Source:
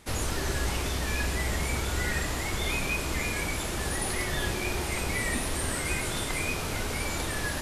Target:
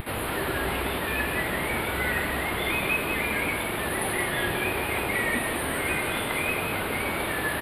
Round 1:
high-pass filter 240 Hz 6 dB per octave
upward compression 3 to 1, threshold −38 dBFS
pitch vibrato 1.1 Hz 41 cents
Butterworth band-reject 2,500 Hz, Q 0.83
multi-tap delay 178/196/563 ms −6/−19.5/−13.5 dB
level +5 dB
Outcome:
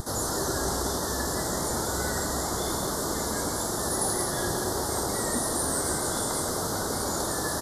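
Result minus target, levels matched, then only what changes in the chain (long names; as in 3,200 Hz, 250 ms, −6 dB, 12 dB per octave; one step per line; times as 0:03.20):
2,000 Hz band −10.0 dB
change: Butterworth band-reject 6,200 Hz, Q 0.83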